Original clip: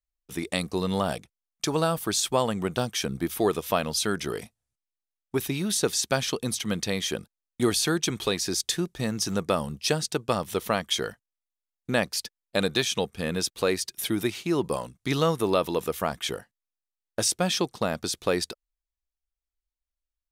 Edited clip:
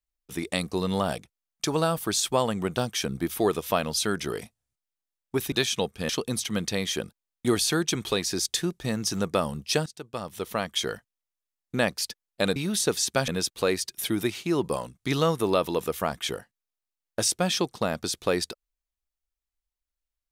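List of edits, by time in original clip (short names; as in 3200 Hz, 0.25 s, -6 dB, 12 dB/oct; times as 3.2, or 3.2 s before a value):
5.52–6.24 swap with 12.71–13.28
10.01–11.09 fade in, from -17.5 dB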